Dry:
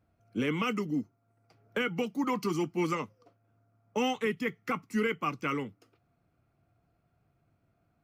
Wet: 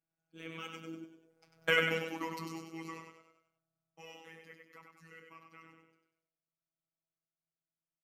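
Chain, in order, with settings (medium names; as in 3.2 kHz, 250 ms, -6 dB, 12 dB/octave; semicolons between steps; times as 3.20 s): Doppler pass-by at 1.68 s, 17 m/s, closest 2.5 m; tilt shelf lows -4.5 dB, about 840 Hz; on a send: frequency-shifting echo 97 ms, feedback 46%, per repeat +34 Hz, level -5 dB; on the sum: simulated room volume 290 m³, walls furnished, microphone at 0.46 m; robot voice 163 Hz; trim +4 dB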